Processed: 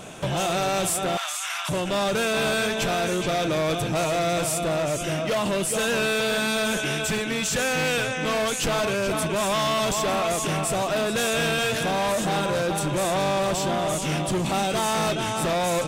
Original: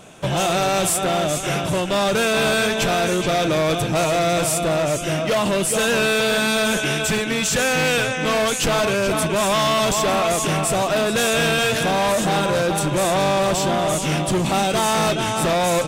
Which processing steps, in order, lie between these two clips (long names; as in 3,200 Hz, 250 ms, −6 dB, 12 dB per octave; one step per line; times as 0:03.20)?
0:01.17–0:01.69: Butterworth high-pass 920 Hz 36 dB per octave
brickwall limiter −24.5 dBFS, peak gain reduction 9.5 dB
level +4 dB